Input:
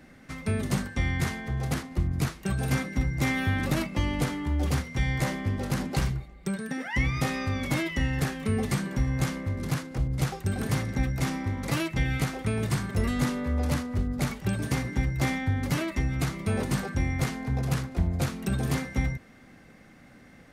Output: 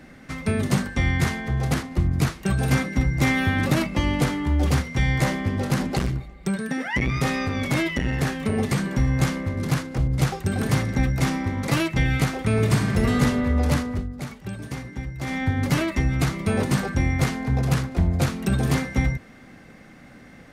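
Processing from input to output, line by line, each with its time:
0:05.87–0:08.89: saturating transformer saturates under 280 Hz
0:12.45–0:13.14: thrown reverb, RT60 2.4 s, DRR 3.5 dB
0:13.89–0:15.43: duck −10.5 dB, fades 0.18 s
whole clip: high-shelf EQ 8,700 Hz −4 dB; mains-hum notches 50/100 Hz; level +6 dB

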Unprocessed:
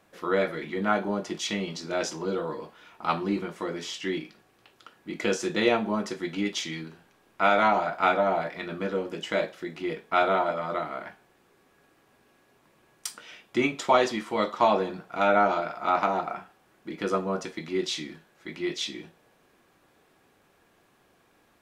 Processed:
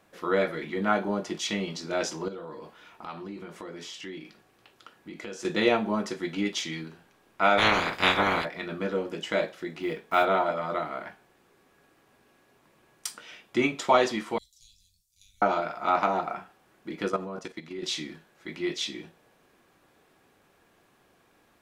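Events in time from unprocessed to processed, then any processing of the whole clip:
0:02.28–0:05.45: downward compressor 3 to 1, threshold −39 dBFS
0:07.57–0:08.44: ceiling on every frequency bin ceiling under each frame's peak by 26 dB
0:09.81–0:10.27: one scale factor per block 7 bits
0:14.38–0:15.42: inverse Chebyshev band-stop filter 280–1,300 Hz, stop band 80 dB
0:17.08–0:17.83: output level in coarse steps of 12 dB

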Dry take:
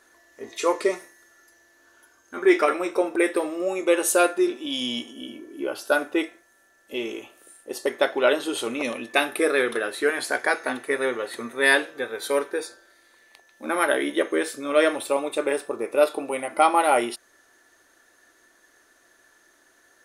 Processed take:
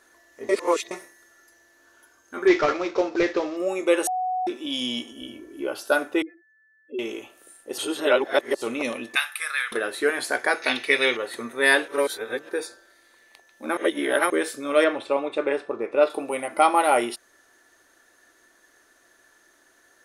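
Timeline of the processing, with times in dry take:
0:00.49–0:00.91: reverse
0:02.47–0:03.57: variable-slope delta modulation 32 kbit/s
0:04.07–0:04.47: beep over 740 Hz −23 dBFS
0:05.12–0:05.65: low shelf with overshoot 120 Hz +11 dB, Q 1.5
0:06.22–0:06.99: expanding power law on the bin magnitudes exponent 3.5
0:07.78–0:08.62: reverse
0:09.15–0:09.72: high-pass filter 1,200 Hz 24 dB per octave
0:10.62–0:11.17: flat-topped bell 3,500 Hz +15 dB
0:11.88–0:12.49: reverse
0:13.77–0:14.30: reverse
0:14.84–0:16.10: low-pass filter 3,500 Hz

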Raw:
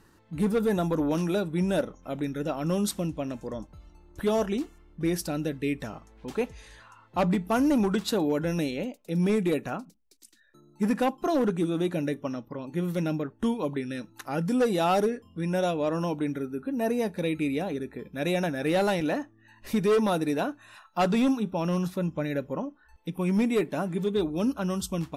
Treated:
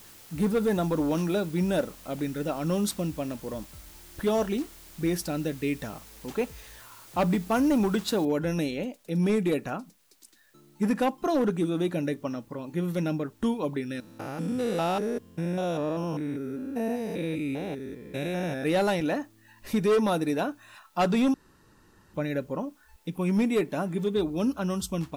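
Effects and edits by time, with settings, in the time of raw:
0:08.25: noise floor change −51 dB −67 dB
0:14.00–0:18.64: spectrum averaged block by block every 200 ms
0:21.34–0:22.14: fill with room tone

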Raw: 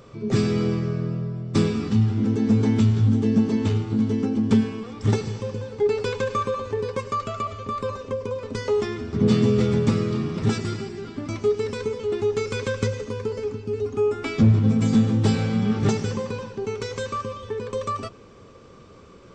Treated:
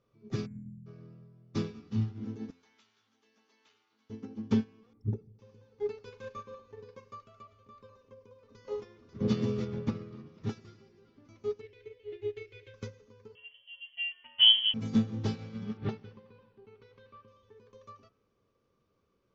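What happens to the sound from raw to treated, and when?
0:00.46–0:00.86: time-frequency box erased 320–7,000 Hz
0:02.50–0:04.10: high-pass filter 1,200 Hz
0:04.93–0:05.39: spectral envelope exaggerated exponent 2
0:06.07–0:07.15: double-tracking delay 40 ms −8 dB
0:07.94–0:08.59: delay throw 540 ms, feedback 70%, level −5 dB
0:09.64–0:10.26: high-shelf EQ 5,800 Hz → 4,000 Hz −11.5 dB
0:11.61–0:12.74: drawn EQ curve 120 Hz 0 dB, 180 Hz −28 dB, 350 Hz +4 dB, 1,200 Hz −14 dB, 2,000 Hz +7 dB, 3,200 Hz +5 dB, 5,400 Hz −11 dB
0:13.35–0:14.74: voice inversion scrambler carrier 3,200 Hz
0:15.77–0:17.28: low-pass filter 3,900 Hz 24 dB per octave
whole clip: Butterworth low-pass 6,900 Hz 96 dB per octave; hum removal 86.24 Hz, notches 29; expander for the loud parts 2.5 to 1, over −28 dBFS; level −4 dB

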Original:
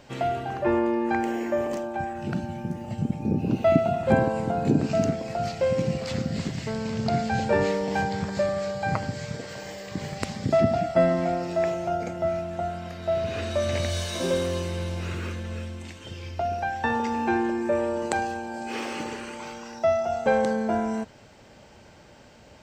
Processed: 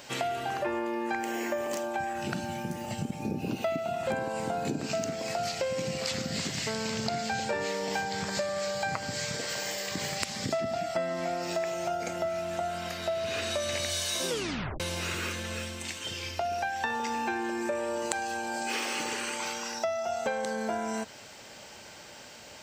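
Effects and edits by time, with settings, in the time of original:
0:14.28: tape stop 0.52 s
whole clip: spectral tilt +3 dB per octave; downward compressor 6 to 1, threshold −32 dBFS; level +3.5 dB

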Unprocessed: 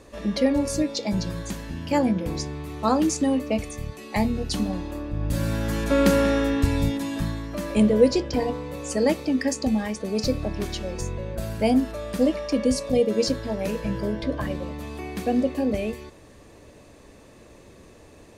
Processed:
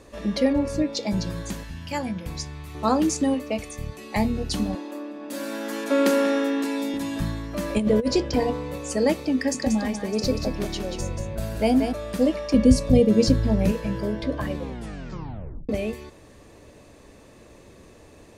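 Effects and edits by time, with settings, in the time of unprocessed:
0:00.53–0:00.93: bass and treble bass +1 dB, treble −12 dB
0:01.63–0:02.75: parametric band 370 Hz −12 dB 1.9 octaves
0:03.34–0:03.79: low-shelf EQ 350 Hz −6.5 dB
0:04.75–0:06.94: elliptic high-pass filter 240 Hz, stop band 50 dB
0:07.56–0:08.78: compressor whose output falls as the input rises −19 dBFS, ratio −0.5
0:09.36–0:11.93: single-tap delay 185 ms −6.5 dB
0:12.54–0:13.72: bass and treble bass +14 dB, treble 0 dB
0:14.57: tape stop 1.12 s

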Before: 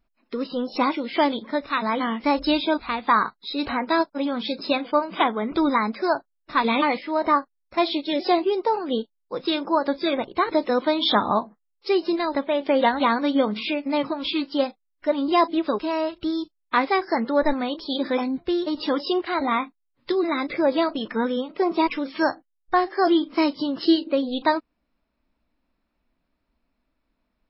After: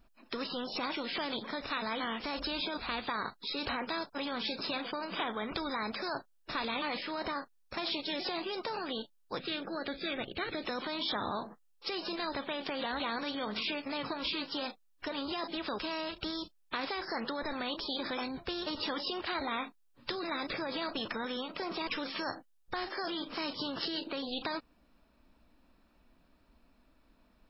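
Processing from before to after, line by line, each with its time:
0:09.39–0:10.65: phaser with its sweep stopped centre 2,400 Hz, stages 4
whole clip: brickwall limiter −18.5 dBFS; notch filter 2,100 Hz, Q 8.9; every bin compressed towards the loudest bin 2 to 1

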